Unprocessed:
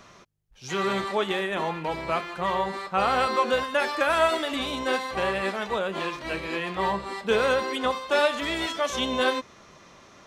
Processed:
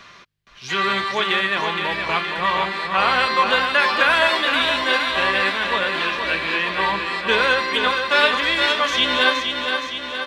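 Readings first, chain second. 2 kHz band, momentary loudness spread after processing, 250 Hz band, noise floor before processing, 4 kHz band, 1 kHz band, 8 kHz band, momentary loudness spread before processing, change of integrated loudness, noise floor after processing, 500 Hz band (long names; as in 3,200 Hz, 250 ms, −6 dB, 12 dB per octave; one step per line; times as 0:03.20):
+11.5 dB, 6 LU, +1.5 dB, −52 dBFS, +12.0 dB, +6.5 dB, +2.5 dB, 7 LU, +7.5 dB, −45 dBFS, +1.5 dB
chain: flat-topped bell 2,300 Hz +10.5 dB 2.4 octaves
notch filter 1,300 Hz, Q 9.8
repeating echo 468 ms, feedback 59%, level −6 dB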